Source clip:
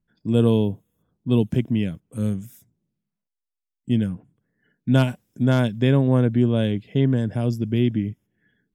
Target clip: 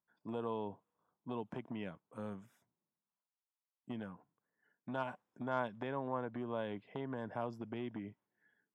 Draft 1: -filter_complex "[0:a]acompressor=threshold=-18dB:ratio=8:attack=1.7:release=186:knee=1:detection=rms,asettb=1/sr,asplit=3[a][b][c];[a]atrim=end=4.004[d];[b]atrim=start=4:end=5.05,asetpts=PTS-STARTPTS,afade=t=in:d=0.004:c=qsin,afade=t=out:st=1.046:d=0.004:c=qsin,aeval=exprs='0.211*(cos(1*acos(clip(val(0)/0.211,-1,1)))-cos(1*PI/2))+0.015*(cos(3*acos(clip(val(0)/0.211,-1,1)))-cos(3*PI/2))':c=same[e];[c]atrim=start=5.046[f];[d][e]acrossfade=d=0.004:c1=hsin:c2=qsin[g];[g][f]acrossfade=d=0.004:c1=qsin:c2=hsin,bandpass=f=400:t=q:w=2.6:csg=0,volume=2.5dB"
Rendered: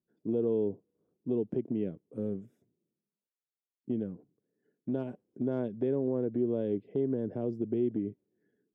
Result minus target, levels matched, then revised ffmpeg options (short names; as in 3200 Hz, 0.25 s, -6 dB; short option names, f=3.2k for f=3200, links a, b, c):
1000 Hz band -19.5 dB
-filter_complex "[0:a]acompressor=threshold=-18dB:ratio=8:attack=1.7:release=186:knee=1:detection=rms,asettb=1/sr,asplit=3[a][b][c];[a]atrim=end=4.004[d];[b]atrim=start=4:end=5.05,asetpts=PTS-STARTPTS,afade=t=in:d=0.004:c=qsin,afade=t=out:st=1.046:d=0.004:c=qsin,aeval=exprs='0.211*(cos(1*acos(clip(val(0)/0.211,-1,1)))-cos(1*PI/2))+0.015*(cos(3*acos(clip(val(0)/0.211,-1,1)))-cos(3*PI/2))':c=same[e];[c]atrim=start=5.046[f];[d][e]acrossfade=d=0.004:c1=hsin:c2=qsin[g];[g][f]acrossfade=d=0.004:c1=qsin:c2=hsin,bandpass=f=990:t=q:w=2.6:csg=0,volume=2.5dB"